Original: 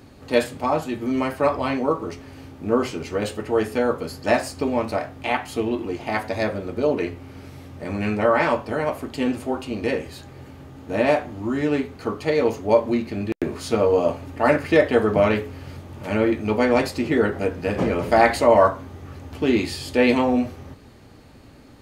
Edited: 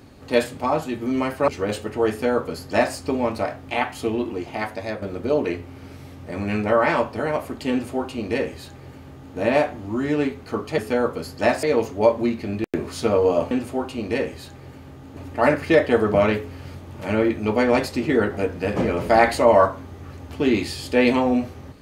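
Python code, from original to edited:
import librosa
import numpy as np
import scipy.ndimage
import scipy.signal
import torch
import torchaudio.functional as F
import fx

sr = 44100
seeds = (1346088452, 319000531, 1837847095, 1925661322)

y = fx.edit(x, sr, fx.cut(start_s=1.48, length_s=1.53),
    fx.duplicate(start_s=3.63, length_s=0.85, to_s=12.31),
    fx.fade_out_to(start_s=5.79, length_s=0.76, floor_db=-7.0),
    fx.duplicate(start_s=9.24, length_s=1.66, to_s=14.19), tone=tone)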